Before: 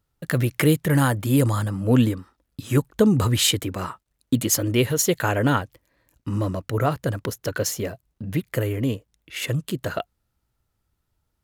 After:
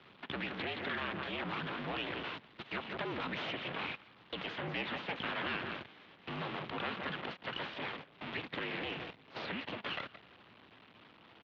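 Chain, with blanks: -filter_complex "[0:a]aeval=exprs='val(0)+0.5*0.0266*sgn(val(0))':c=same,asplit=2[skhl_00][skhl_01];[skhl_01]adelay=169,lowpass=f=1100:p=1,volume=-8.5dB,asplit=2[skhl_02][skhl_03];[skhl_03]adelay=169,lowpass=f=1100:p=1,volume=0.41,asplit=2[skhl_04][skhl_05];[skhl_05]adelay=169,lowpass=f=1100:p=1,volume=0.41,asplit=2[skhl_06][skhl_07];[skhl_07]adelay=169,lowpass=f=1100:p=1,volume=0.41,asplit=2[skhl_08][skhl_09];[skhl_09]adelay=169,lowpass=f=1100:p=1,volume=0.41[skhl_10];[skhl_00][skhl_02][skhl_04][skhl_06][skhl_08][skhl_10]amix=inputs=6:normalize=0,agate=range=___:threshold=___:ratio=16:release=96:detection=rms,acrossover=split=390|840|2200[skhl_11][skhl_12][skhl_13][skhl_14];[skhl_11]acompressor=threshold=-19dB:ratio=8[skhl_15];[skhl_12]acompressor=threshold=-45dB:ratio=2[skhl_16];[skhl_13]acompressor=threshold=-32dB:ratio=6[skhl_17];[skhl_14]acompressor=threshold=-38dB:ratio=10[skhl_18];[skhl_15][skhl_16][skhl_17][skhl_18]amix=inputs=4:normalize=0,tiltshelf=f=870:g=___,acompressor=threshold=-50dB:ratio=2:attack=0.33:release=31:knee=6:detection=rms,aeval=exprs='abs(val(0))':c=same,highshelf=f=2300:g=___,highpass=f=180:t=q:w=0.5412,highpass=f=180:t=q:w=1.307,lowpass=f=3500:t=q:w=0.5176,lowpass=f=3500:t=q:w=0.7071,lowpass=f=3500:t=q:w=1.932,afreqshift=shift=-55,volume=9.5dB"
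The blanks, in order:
-26dB, -29dB, -8.5, 3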